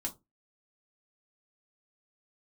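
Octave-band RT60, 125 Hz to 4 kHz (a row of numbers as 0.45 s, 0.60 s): 0.30 s, 0.30 s, 0.25 s, 0.20 s, 0.15 s, 0.15 s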